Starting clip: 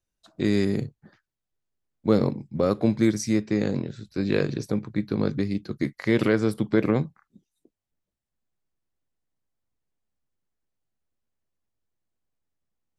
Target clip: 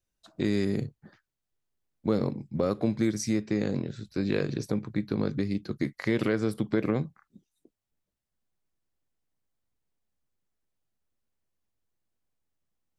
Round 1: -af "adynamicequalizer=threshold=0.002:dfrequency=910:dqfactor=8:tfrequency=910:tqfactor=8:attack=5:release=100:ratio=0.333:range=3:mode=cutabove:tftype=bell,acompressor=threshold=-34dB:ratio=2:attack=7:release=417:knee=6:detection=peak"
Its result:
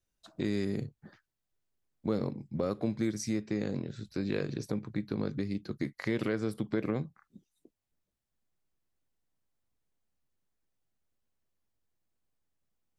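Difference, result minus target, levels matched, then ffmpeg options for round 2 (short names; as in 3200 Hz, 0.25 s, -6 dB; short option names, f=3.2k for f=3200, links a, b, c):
compressor: peak gain reduction +5 dB
-af "adynamicequalizer=threshold=0.002:dfrequency=910:dqfactor=8:tfrequency=910:tqfactor=8:attack=5:release=100:ratio=0.333:range=3:mode=cutabove:tftype=bell,acompressor=threshold=-24dB:ratio=2:attack=7:release=417:knee=6:detection=peak"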